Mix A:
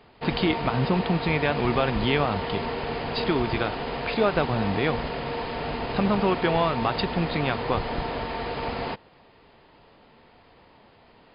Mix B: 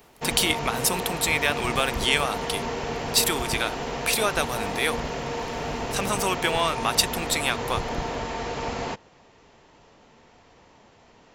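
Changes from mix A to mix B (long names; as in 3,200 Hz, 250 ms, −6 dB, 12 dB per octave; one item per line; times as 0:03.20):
speech: add spectral tilt +4.5 dB per octave
master: remove linear-phase brick-wall low-pass 5,100 Hz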